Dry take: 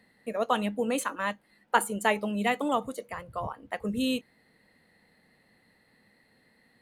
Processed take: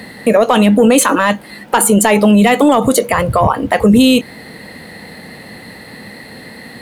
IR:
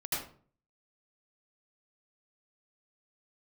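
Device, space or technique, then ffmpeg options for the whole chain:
mastering chain: -af "highpass=53,equalizer=f=1600:t=o:w=1.4:g=-2.5,acompressor=threshold=0.0282:ratio=2,asoftclip=type=tanh:threshold=0.0944,alimiter=level_in=44.7:limit=0.891:release=50:level=0:latency=1,volume=0.891"

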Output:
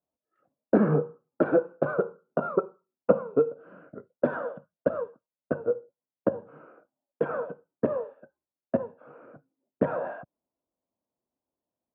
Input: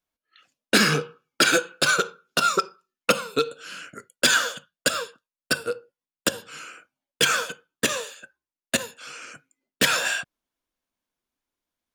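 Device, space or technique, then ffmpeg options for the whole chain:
under water: -filter_complex "[0:a]highpass=86,lowpass=f=900:w=0.5412,lowpass=f=900:w=1.3066,equalizer=f=600:t=o:w=0.31:g=4.5,asettb=1/sr,asplit=3[s0][s1][s2];[s0]atrim=end=6.674[s3];[s1]atrim=start=6.67:end=7.31,asetpts=PTS-STARTPTS,afade=t=in:d=0.004:c=qsin,afade=t=out:st=0.636:d=0.004:c=qsin,equalizer=f=98:t=o:w=1.6:g=-8[s4];[s2]atrim=start=7.306[s5];[s3][s4]acrossfade=d=0.004:c1=hsin:c2=qsin[s6];[s6][s5]acrossfade=d=0.004:c1=qsin:c2=hsin,volume=1.19"

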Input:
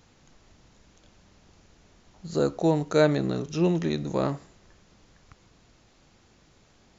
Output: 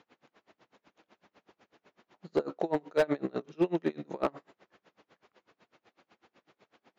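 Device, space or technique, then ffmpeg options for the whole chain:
helicopter radio: -af "highpass=340,lowpass=2700,aeval=exprs='val(0)*pow(10,-31*(0.5-0.5*cos(2*PI*8*n/s))/20)':c=same,asoftclip=type=hard:threshold=0.0668,volume=1.78"

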